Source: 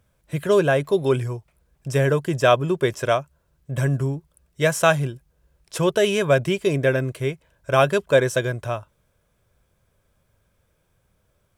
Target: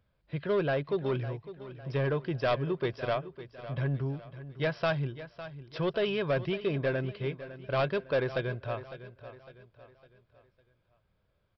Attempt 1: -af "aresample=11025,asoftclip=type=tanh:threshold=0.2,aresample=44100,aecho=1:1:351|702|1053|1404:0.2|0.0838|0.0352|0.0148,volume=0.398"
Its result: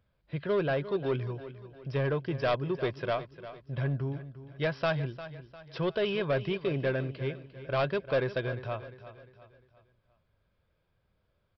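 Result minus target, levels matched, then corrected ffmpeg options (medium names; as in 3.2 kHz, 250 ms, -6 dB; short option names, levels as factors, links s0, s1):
echo 204 ms early
-af "aresample=11025,asoftclip=type=tanh:threshold=0.2,aresample=44100,aecho=1:1:555|1110|1665|2220:0.2|0.0838|0.0352|0.0148,volume=0.398"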